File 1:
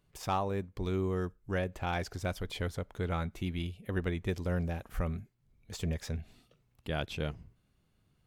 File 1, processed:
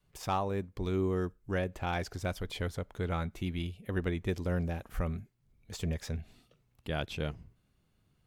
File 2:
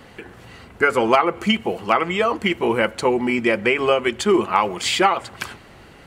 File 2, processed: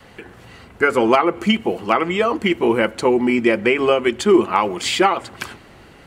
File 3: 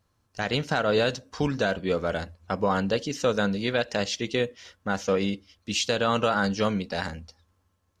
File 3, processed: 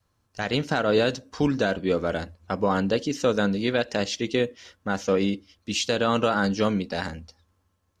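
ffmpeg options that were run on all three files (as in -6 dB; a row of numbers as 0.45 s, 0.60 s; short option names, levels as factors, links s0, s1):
-af "adynamicequalizer=threshold=0.0178:dfrequency=300:dqfactor=1.6:tfrequency=300:tqfactor=1.6:attack=5:release=100:ratio=0.375:range=3:mode=boostabove:tftype=bell"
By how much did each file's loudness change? +0.5 LU, +2.0 LU, +1.5 LU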